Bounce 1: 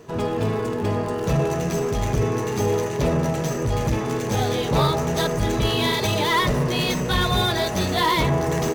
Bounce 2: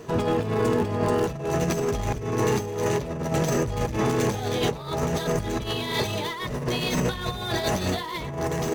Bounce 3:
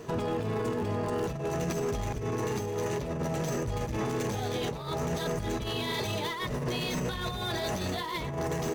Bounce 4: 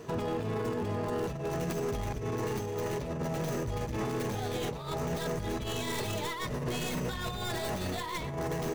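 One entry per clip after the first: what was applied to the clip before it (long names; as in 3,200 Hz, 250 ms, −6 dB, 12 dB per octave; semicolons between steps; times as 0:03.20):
compressor whose output falls as the input rises −25 dBFS, ratio −0.5
brickwall limiter −21 dBFS, peak gain reduction 9.5 dB; level −2 dB
stylus tracing distortion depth 0.17 ms; on a send at −22.5 dB: convolution reverb, pre-delay 120 ms; on the sum: level −2 dB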